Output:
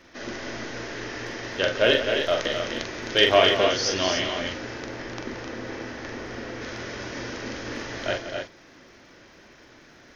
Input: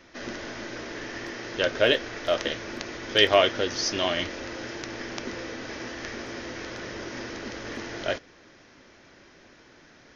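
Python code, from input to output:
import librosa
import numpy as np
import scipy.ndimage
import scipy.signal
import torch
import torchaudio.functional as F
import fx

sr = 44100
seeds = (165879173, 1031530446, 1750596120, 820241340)

y = fx.high_shelf(x, sr, hz=2400.0, db=-7.5, at=(4.54, 6.62))
y = fx.dmg_crackle(y, sr, seeds[0], per_s=140.0, level_db=-58.0)
y = fx.echo_multitap(y, sr, ms=(43, 176, 260, 295), db=(-5.0, -11.5, -6.5, -7.0))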